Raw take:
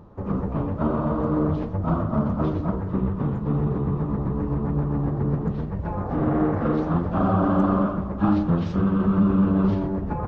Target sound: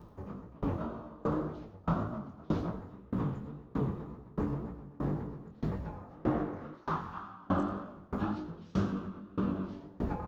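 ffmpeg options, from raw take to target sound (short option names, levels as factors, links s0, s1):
-filter_complex "[0:a]acompressor=threshold=0.0891:ratio=6,asettb=1/sr,asplit=3[s0][s1][s2];[s0]atrim=end=6.734[s3];[s1]atrim=start=6.73:end=7.47,asetpts=PTS-STARTPTS,afade=t=in:d=0.004:c=qsin,afade=t=out:st=0.736:d=0.004:c=qsin,lowshelf=f=770:t=q:w=3:g=-8[s4];[s2]atrim=start=7.466[s5];[s3][s4]acrossfade=d=0.004:c1=hsin:c2=qsin[s6];[s6][s5]acrossfade=d=0.004:c1=qsin:c2=hsin,asplit=2[s7][s8];[s8]asplit=7[s9][s10][s11][s12][s13][s14][s15];[s9]adelay=87,afreqshift=49,volume=0.335[s16];[s10]adelay=174,afreqshift=98,volume=0.202[s17];[s11]adelay=261,afreqshift=147,volume=0.12[s18];[s12]adelay=348,afreqshift=196,volume=0.0724[s19];[s13]adelay=435,afreqshift=245,volume=0.0437[s20];[s14]adelay=522,afreqshift=294,volume=0.026[s21];[s15]adelay=609,afreqshift=343,volume=0.0157[s22];[s16][s17][s18][s19][s20][s21][s22]amix=inputs=7:normalize=0[s23];[s7][s23]amix=inputs=2:normalize=0,crystalizer=i=4:c=0,flanger=delay=16.5:depth=7.8:speed=1.9,aeval=exprs='val(0)*pow(10,-27*if(lt(mod(1.6*n/s,1),2*abs(1.6)/1000),1-mod(1.6*n/s,1)/(2*abs(1.6)/1000),(mod(1.6*n/s,1)-2*abs(1.6)/1000)/(1-2*abs(1.6)/1000))/20)':c=same"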